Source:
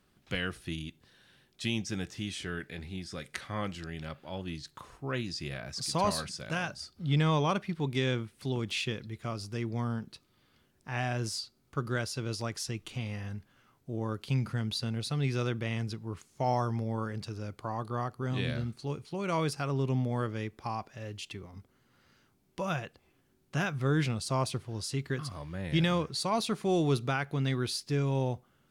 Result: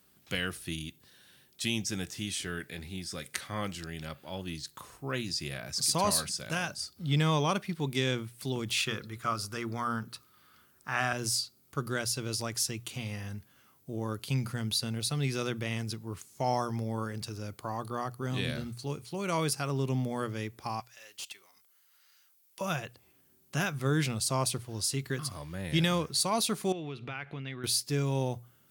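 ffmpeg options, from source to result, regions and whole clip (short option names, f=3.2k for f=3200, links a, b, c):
-filter_complex "[0:a]asettb=1/sr,asplit=3[a][b][c];[a]atrim=end=8.784[d];[b]atrim=start=8.78:end=11.13,asetpts=PTS-STARTPTS,afade=t=in:d=0.004:c=qsin,afade=t=out:st=2.346:d=0.004:c=qsin,equalizer=f=1.3k:w=2.1:g=13,bandreject=f=60:t=h:w=6,bandreject=f=120:t=h:w=6,bandreject=f=180:t=h:w=6,bandreject=f=240:t=h:w=6,bandreject=f=300:t=h:w=6,bandreject=f=360:t=h:w=6,bandreject=f=420:t=h:w=6,bandreject=f=480:t=h:w=6,bandreject=f=540:t=h:w=6[e];[c]atrim=start=11.126[f];[d][e]acrossfade=d=0.004:c1=hsin:c2=qsin[g];[g][f]acrossfade=d=0.004:c1=qsin:c2=hsin,asettb=1/sr,asplit=3[h][i][j];[h]atrim=end=20.804[k];[i]atrim=start=20.8:end=22.61,asetpts=PTS-STARTPTS,afade=t=in:d=0.004:c=qsin,afade=t=out:st=1.806:d=0.004:c=qsin,aderivative,asplit=2[l][m];[m]highpass=f=720:p=1,volume=18dB,asoftclip=type=tanh:threshold=-25.5dB[n];[l][n]amix=inputs=2:normalize=0,lowpass=f=1.6k:p=1,volume=-6dB[o];[j]atrim=start=22.606[p];[k][o]acrossfade=d=0.004:c1=hsin:c2=qsin[q];[q][p]acrossfade=d=0.004:c1=qsin:c2=hsin,asettb=1/sr,asplit=3[r][s][t];[r]atrim=end=26.724[u];[s]atrim=start=26.72:end=27.64,asetpts=PTS-STARTPTS,afade=t=in:d=0.004:c=qsin,afade=t=out:st=0.916:d=0.004:c=qsin,acompressor=threshold=-36dB:ratio=8:attack=3.2:release=140:knee=1:detection=peak,lowpass=f=2.6k:t=q:w=2.4[v];[t]atrim=start=27.636[w];[u][v]acrossfade=d=0.004:c1=hsin:c2=qsin[x];[x][w]acrossfade=d=0.004:c1=qsin:c2=hsin,highpass=56,aemphasis=mode=production:type=50fm,bandreject=f=60:t=h:w=6,bandreject=f=120:t=h:w=6"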